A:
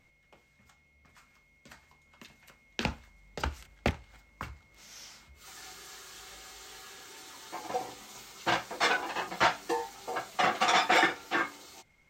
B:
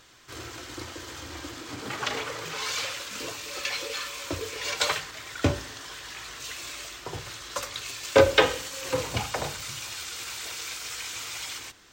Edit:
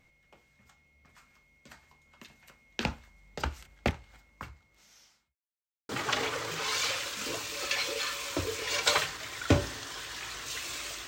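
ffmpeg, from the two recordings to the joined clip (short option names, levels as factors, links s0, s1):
-filter_complex "[0:a]apad=whole_dur=11.07,atrim=end=11.07,asplit=2[s0][s1];[s0]atrim=end=5.35,asetpts=PTS-STARTPTS,afade=t=out:st=4.07:d=1.28[s2];[s1]atrim=start=5.35:end=5.89,asetpts=PTS-STARTPTS,volume=0[s3];[1:a]atrim=start=1.83:end=7.01,asetpts=PTS-STARTPTS,afade=t=in:d=0.004:c=hsin[s4];[s2][s3][s4]concat=n=3:v=0:a=1"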